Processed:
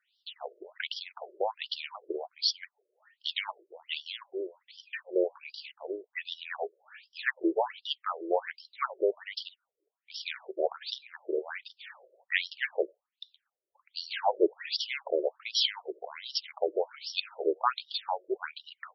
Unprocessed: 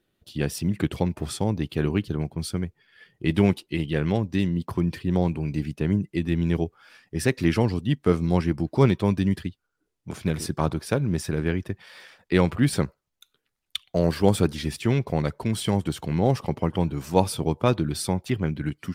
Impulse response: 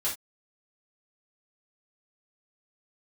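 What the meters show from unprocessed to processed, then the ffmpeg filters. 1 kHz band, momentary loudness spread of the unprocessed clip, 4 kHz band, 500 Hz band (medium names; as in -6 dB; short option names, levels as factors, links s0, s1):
-3.0 dB, 8 LU, +3.5 dB, -5.5 dB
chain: -af "bass=f=250:g=-8,treble=f=4000:g=14,afftfilt=real='re*between(b*sr/1024,440*pow(4100/440,0.5+0.5*sin(2*PI*1.3*pts/sr))/1.41,440*pow(4100/440,0.5+0.5*sin(2*PI*1.3*pts/sr))*1.41)':imag='im*between(b*sr/1024,440*pow(4100/440,0.5+0.5*sin(2*PI*1.3*pts/sr))/1.41,440*pow(4100/440,0.5+0.5*sin(2*PI*1.3*pts/sr))*1.41)':win_size=1024:overlap=0.75,volume=1.41"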